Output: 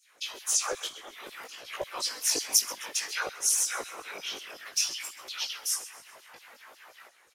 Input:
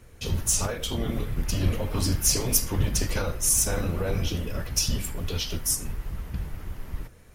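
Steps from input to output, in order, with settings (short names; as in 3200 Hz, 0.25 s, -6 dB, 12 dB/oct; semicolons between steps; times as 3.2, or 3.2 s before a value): weighting filter A; 0.87–1.65 negative-ratio compressor -41 dBFS, ratio -1; LFO high-pass saw down 5.5 Hz 430–6800 Hz; whisperiser; chorus voices 2, 0.57 Hz, delay 18 ms, depth 2.7 ms; on a send: frequency-shifting echo 0.132 s, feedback 49%, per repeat -34 Hz, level -17.5 dB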